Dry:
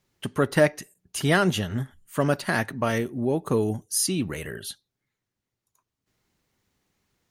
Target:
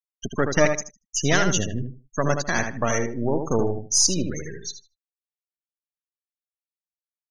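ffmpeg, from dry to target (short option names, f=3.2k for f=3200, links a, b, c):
-filter_complex "[0:a]aeval=exprs='if(lt(val(0),0),0.251*val(0),val(0))':c=same,lowpass=f=6.2k:t=q:w=6.8,afftfilt=real='re*gte(hypot(re,im),0.0398)':imag='im*gte(hypot(re,im),0.0398)':win_size=1024:overlap=0.75,aeval=exprs='0.447*(cos(1*acos(clip(val(0)/0.447,-1,1)))-cos(1*PI/2))+0.00282*(cos(6*acos(clip(val(0)/0.447,-1,1)))-cos(6*PI/2))':c=same,asplit=2[a][b];[b]adelay=77,lowpass=f=3.3k:p=1,volume=-6dB,asplit=2[c][d];[d]adelay=77,lowpass=f=3.3k:p=1,volume=0.23,asplit=2[e][f];[f]adelay=77,lowpass=f=3.3k:p=1,volume=0.23[g];[c][e][g]amix=inputs=3:normalize=0[h];[a][h]amix=inputs=2:normalize=0,volume=3dB"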